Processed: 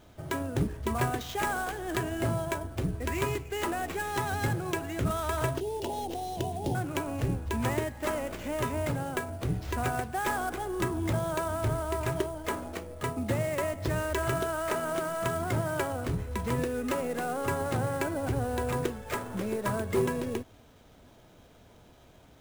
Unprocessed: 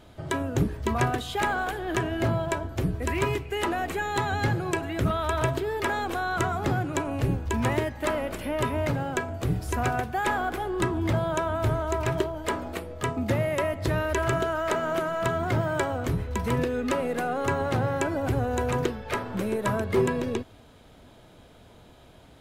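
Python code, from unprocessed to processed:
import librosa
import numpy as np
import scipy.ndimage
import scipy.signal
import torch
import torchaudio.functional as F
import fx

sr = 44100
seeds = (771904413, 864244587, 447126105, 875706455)

y = fx.cheby1_bandstop(x, sr, low_hz=900.0, high_hz=2800.0, order=4, at=(5.6, 6.75))
y = fx.sample_hold(y, sr, seeds[0], rate_hz=9800.0, jitter_pct=20)
y = y * 10.0 ** (-4.0 / 20.0)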